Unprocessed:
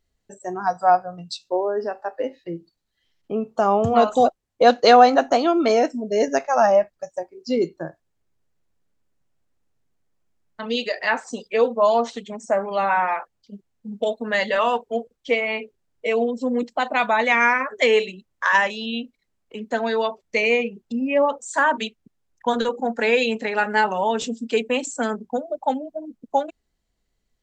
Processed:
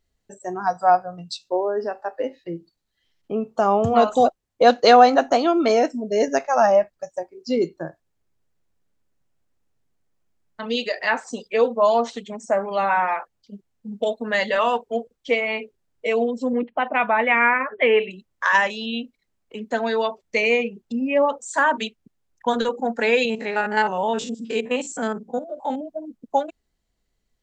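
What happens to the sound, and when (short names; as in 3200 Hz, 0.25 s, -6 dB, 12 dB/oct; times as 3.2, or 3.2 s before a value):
16.53–18.11 steep low-pass 3000 Hz 48 dB/oct
23.25–25.81 stepped spectrum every 50 ms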